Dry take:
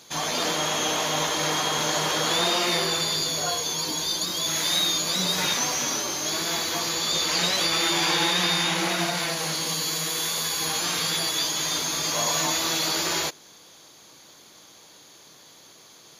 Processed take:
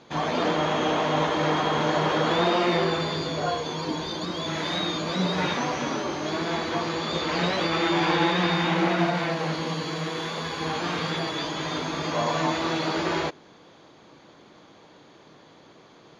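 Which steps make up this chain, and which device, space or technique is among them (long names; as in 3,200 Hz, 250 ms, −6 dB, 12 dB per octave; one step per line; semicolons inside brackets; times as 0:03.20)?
phone in a pocket (low-pass filter 3,500 Hz 12 dB per octave; parametric band 250 Hz +2.5 dB 1.6 octaves; high-shelf EQ 2,200 Hz −11 dB)
level +4.5 dB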